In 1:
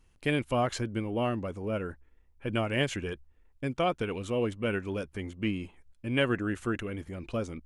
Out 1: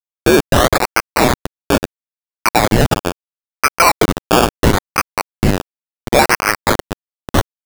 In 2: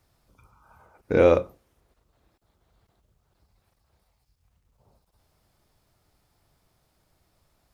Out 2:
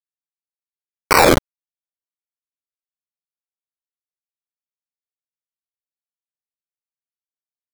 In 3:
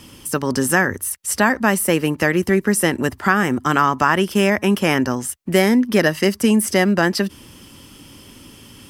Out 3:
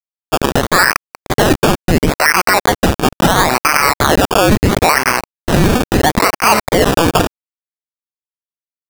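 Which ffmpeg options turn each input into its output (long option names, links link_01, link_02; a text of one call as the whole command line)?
ffmpeg -i in.wav -filter_complex "[0:a]acompressor=threshold=-22dB:ratio=10,asuperstop=centerf=3400:order=8:qfactor=3.7,asplit=2[link_01][link_02];[link_02]adelay=853,lowpass=frequency=870:poles=1,volume=-21.5dB,asplit=2[link_03][link_04];[link_04]adelay=853,lowpass=frequency=870:poles=1,volume=0.51,asplit=2[link_05][link_06];[link_06]adelay=853,lowpass=frequency=870:poles=1,volume=0.51,asplit=2[link_07][link_08];[link_08]adelay=853,lowpass=frequency=870:poles=1,volume=0.51[link_09];[link_03][link_05][link_07][link_09]amix=inputs=4:normalize=0[link_10];[link_01][link_10]amix=inputs=2:normalize=0,aresample=11025,aresample=44100,crystalizer=i=9.5:c=0,acrusher=bits=3:mix=0:aa=0.000001,highshelf=frequency=3200:gain=8.5,acrossover=split=3600[link_11][link_12];[link_12]acompressor=threshold=-39dB:ratio=4:attack=1:release=60[link_13];[link_11][link_13]amix=inputs=2:normalize=0,highpass=frequency=530:poles=1,equalizer=frequency=2400:width_type=o:width=0.72:gain=13.5,acrusher=samples=17:mix=1:aa=0.000001:lfo=1:lforange=10.2:lforate=0.74,alimiter=level_in=10.5dB:limit=-1dB:release=50:level=0:latency=1,volume=-1dB" out.wav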